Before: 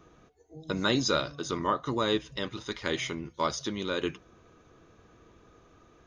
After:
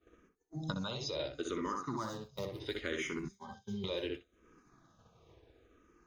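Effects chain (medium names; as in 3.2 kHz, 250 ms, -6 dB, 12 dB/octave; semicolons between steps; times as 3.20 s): 1.93–2.60 s: median filter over 15 samples; on a send: filtered feedback delay 63 ms, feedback 16%, low-pass 2.6 kHz, level -3.5 dB; 0.74–1.20 s: on the sum: level held to a coarse grid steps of 10 dB; 3.28–3.84 s: pitch-class resonator G, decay 0.23 s; in parallel at +1.5 dB: peak limiter -23.5 dBFS, peak gain reduction 9 dB; on the sum: compression 8:1, threshold -37 dBFS, peak gain reduction 18 dB; feedback echo behind a high-pass 320 ms, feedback 81%, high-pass 5 kHz, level -11.5 dB; expander -37 dBFS; barber-pole phaser -0.71 Hz; trim +5.5 dB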